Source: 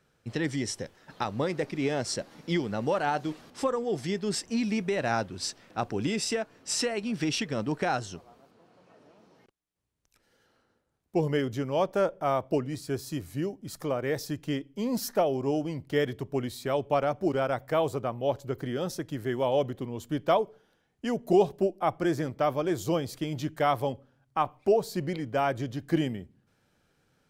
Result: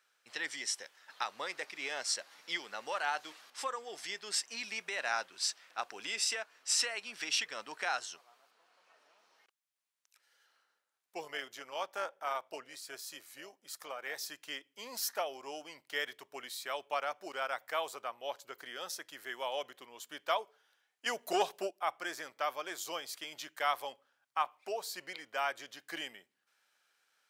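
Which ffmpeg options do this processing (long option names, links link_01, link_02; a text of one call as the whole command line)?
ffmpeg -i in.wav -filter_complex "[0:a]asettb=1/sr,asplit=3[link_01][link_02][link_03];[link_01]atrim=end=11.234[link_04];[link_02]atrim=start=11.23:end=14.22,asetpts=PTS-STARTPTS,afade=type=in:duration=0.004:curve=qsin,afade=type=out:start_time=2.986:duration=0.004:curve=qsin,tremolo=f=250:d=0.462[link_05];[link_03]atrim=start=14.216[link_06];[link_04][link_05]acrossfade=duration=0.004:curve1=hsin:curve2=qsin[link_07];[link_07][link_06]acrossfade=duration=0.004:curve1=qsin:curve2=hsin,asettb=1/sr,asplit=3[link_08][link_09][link_10];[link_08]atrim=end=21.064[link_11];[link_09]atrim=start=21.06:end=21.71,asetpts=PTS-STARTPTS,afade=type=in:duration=0.004:curve=qsin,afade=type=out:start_time=0.646:duration=0.004:curve=qsin,acontrast=83[link_12];[link_10]atrim=start=21.706[link_13];[link_11][link_12]acrossfade=duration=0.004:curve1=hsin:curve2=qsin[link_14];[link_14][link_13]acrossfade=duration=0.004:curve1=qsin:curve2=hsin,highpass=1200" out.wav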